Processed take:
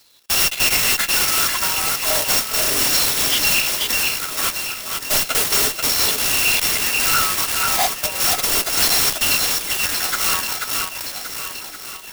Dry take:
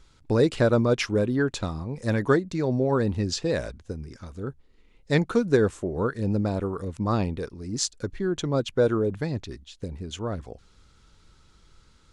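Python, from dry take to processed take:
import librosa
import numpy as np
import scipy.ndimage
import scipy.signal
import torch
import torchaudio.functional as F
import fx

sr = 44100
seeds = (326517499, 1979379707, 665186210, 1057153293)

p1 = fx.bit_reversed(x, sr, seeds[0], block=256)
p2 = fx.filter_lfo_highpass(p1, sr, shape='saw_down', hz=0.34, low_hz=300.0, high_hz=4400.0, q=7.2)
p3 = fx.fuzz(p2, sr, gain_db=29.0, gate_db=-38.0)
p4 = p2 + F.gain(torch.from_numpy(p3), -9.5).numpy()
p5 = p4 + 10.0 ** (-6.0 / 20.0) * np.pad(p4, (int(486 * sr / 1000.0), 0))[:len(p4)]
p6 = fx.rider(p5, sr, range_db=4, speed_s=2.0)
p7 = p6 + fx.echo_feedback(p6, sr, ms=1120, feedback_pct=47, wet_db=-13, dry=0)
p8 = 10.0 ** (-17.0 / 20.0) * np.tanh(p7 / 10.0 ** (-17.0 / 20.0))
p9 = fx.clock_jitter(p8, sr, seeds[1], jitter_ms=0.024)
y = F.gain(torch.from_numpy(p9), 5.5).numpy()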